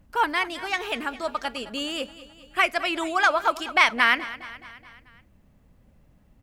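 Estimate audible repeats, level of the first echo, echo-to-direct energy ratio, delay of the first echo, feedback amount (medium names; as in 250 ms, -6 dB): 4, -16.5 dB, -15.0 dB, 212 ms, 57%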